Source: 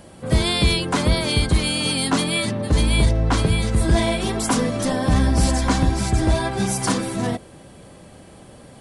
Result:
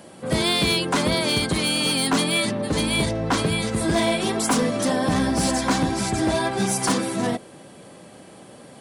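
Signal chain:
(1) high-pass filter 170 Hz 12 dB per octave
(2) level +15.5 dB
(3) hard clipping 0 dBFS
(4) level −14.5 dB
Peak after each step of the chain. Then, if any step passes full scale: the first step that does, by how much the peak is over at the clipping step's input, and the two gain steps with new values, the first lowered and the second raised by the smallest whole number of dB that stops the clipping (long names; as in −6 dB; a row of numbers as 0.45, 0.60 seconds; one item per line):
−7.0, +8.5, 0.0, −14.5 dBFS
step 2, 8.5 dB
step 2 +6.5 dB, step 4 −5.5 dB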